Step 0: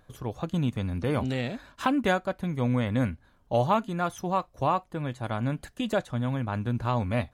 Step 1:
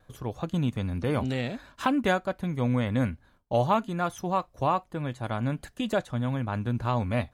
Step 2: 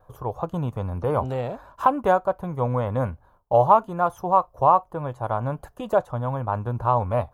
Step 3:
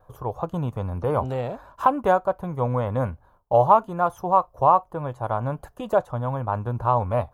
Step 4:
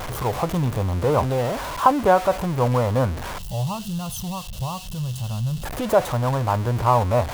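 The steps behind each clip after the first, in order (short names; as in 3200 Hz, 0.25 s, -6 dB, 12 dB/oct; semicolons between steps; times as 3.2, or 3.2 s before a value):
gate with hold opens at -51 dBFS
graphic EQ 250/500/1000/2000/4000/8000 Hz -10/+4/+10/-12/-11/-9 dB; gain +3.5 dB
nothing audible
zero-crossing step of -27 dBFS; spectral gain 3.39–5.64, 220–2600 Hz -19 dB; gain +2 dB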